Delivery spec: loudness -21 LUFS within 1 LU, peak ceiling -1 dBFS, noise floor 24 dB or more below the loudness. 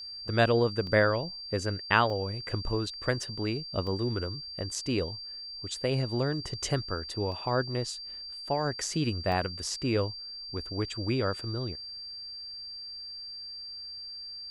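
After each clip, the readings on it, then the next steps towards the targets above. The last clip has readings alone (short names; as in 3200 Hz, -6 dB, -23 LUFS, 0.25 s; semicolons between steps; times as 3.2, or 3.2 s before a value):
dropouts 6; longest dropout 1.8 ms; steady tone 4700 Hz; tone level -39 dBFS; loudness -31.0 LUFS; peak -6.5 dBFS; loudness target -21.0 LUFS
-> interpolate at 0.87/2.1/3.23/3.87/7.32/9.32, 1.8 ms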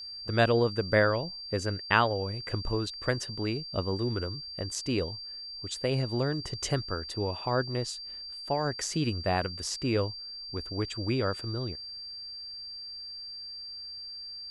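dropouts 0; steady tone 4700 Hz; tone level -39 dBFS
-> notch 4700 Hz, Q 30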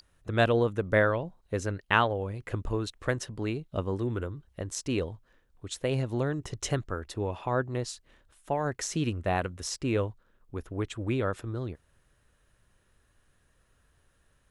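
steady tone none; loudness -31.0 LUFS; peak -6.5 dBFS; loudness target -21.0 LUFS
-> gain +10 dB; limiter -1 dBFS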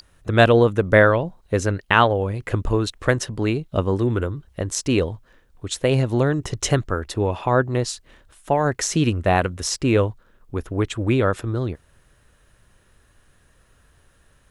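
loudness -21.0 LUFS; peak -1.0 dBFS; noise floor -59 dBFS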